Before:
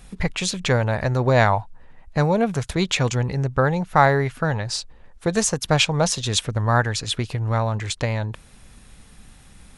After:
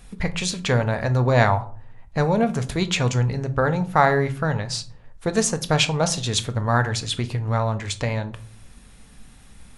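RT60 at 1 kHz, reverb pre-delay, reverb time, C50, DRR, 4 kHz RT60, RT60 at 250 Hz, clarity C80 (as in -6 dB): 0.40 s, 4 ms, 0.45 s, 16.5 dB, 9.0 dB, 0.25 s, 0.70 s, 21.5 dB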